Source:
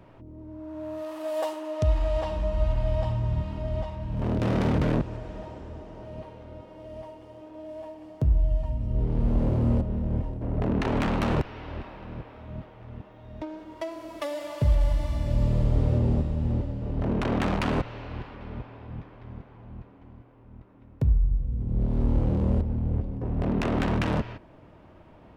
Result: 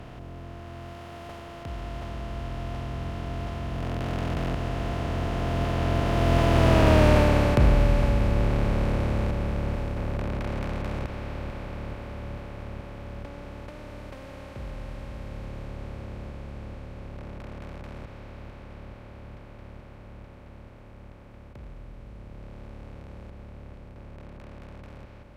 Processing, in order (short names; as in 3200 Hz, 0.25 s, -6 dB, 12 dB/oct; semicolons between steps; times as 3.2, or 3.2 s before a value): per-bin compression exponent 0.2; Doppler pass-by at 6.94, 32 m/s, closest 13 m; gain +5 dB